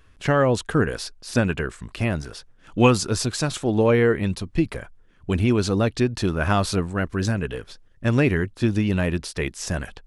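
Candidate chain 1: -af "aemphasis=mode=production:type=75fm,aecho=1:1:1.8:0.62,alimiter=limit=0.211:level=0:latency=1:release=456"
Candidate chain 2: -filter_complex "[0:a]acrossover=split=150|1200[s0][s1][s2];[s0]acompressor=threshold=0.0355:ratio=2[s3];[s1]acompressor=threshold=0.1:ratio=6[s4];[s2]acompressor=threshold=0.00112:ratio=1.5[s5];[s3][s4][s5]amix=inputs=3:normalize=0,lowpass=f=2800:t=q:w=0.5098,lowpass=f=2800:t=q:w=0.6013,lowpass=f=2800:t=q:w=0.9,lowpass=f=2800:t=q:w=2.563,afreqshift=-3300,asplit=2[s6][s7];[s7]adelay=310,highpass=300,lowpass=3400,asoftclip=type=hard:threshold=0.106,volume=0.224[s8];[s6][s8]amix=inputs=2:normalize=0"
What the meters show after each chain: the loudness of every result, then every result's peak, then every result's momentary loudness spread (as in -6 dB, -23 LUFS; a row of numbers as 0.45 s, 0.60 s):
-26.0 LUFS, -22.5 LUFS; -13.5 dBFS, -9.5 dBFS; 8 LU, 9 LU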